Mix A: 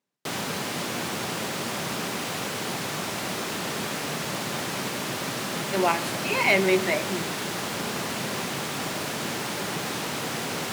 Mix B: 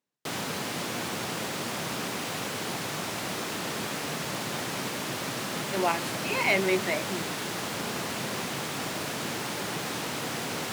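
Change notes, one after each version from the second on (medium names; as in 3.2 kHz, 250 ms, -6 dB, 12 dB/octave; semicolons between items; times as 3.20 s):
reverb: off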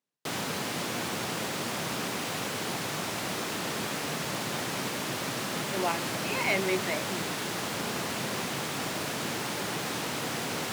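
speech -3.5 dB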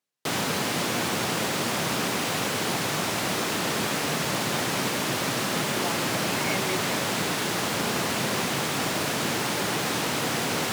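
speech -4.0 dB; background +6.0 dB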